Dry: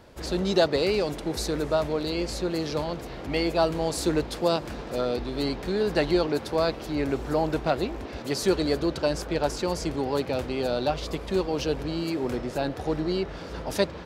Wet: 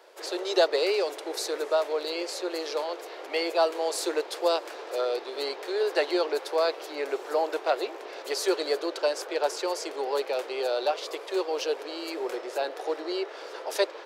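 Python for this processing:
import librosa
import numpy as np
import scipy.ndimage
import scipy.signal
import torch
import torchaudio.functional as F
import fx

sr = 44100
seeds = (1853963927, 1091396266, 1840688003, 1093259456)

y = scipy.signal.sosfilt(scipy.signal.butter(8, 370.0, 'highpass', fs=sr, output='sos'), x)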